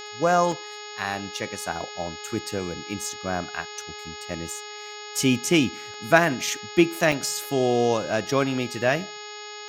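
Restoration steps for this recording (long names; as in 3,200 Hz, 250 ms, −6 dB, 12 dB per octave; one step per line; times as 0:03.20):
hum removal 419.1 Hz, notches 13
notch filter 6,700 Hz, Q 30
repair the gap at 0:00.52/0:05.94/0:07.12, 2.3 ms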